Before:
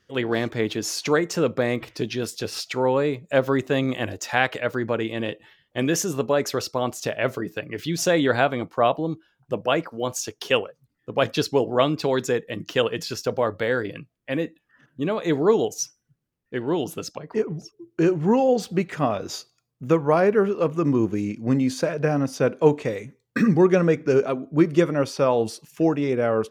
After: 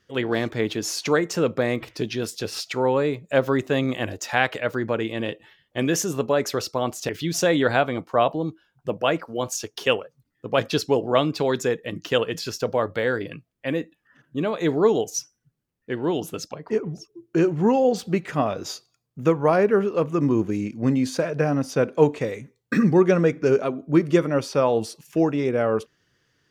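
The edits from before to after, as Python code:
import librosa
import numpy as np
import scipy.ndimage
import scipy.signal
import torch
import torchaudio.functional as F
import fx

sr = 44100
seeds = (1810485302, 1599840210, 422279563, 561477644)

y = fx.edit(x, sr, fx.cut(start_s=7.09, length_s=0.64), tone=tone)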